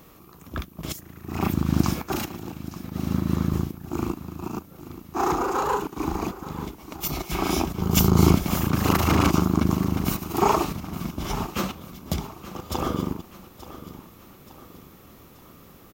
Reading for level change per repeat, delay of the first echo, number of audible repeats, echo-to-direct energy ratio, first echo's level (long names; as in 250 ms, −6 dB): −6.5 dB, 878 ms, 4, −14.0 dB, −15.0 dB